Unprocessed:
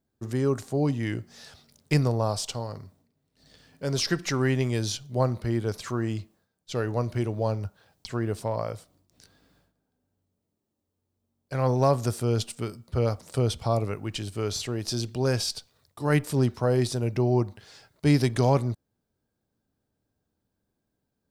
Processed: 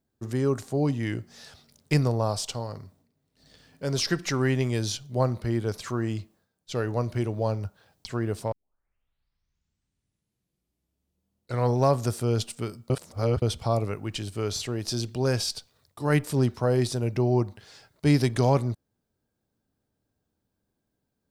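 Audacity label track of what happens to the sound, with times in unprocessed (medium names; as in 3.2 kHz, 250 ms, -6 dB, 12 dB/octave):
8.520000	8.520000	tape start 3.30 s
12.900000	13.420000	reverse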